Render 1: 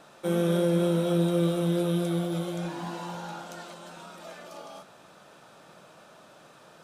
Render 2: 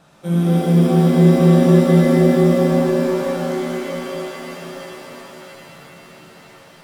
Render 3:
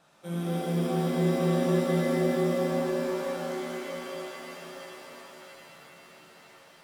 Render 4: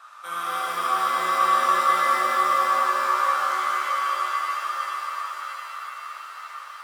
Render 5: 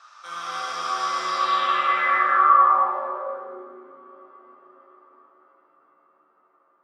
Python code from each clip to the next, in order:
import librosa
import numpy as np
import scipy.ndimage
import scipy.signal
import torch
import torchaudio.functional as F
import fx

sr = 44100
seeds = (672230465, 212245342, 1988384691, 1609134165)

y1 = fx.low_shelf_res(x, sr, hz=230.0, db=7.5, q=1.5)
y1 = fx.rev_shimmer(y1, sr, seeds[0], rt60_s=3.8, semitones=7, shimmer_db=-2, drr_db=-3.5)
y1 = y1 * librosa.db_to_amplitude(-1.5)
y2 = fx.low_shelf(y1, sr, hz=260.0, db=-11.0)
y2 = y2 * librosa.db_to_amplitude(-8.0)
y3 = fx.highpass_res(y2, sr, hz=1200.0, q=9.3)
y3 = y3 * librosa.db_to_amplitude(7.5)
y4 = fx.filter_sweep_lowpass(y3, sr, from_hz=5600.0, to_hz=320.0, start_s=1.23, end_s=3.7, q=3.4)
y4 = fx.echo_split(y4, sr, split_hz=1400.0, low_ms=106, high_ms=157, feedback_pct=52, wet_db=-8)
y4 = y4 * librosa.db_to_amplitude(-4.0)